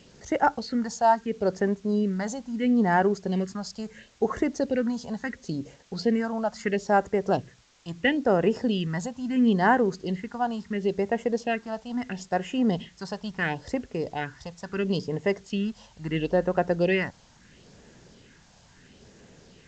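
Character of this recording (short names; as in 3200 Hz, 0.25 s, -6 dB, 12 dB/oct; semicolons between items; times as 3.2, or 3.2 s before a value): phasing stages 4, 0.74 Hz, lowest notch 350–4100 Hz; a quantiser's noise floor 10-bit, dither triangular; G.722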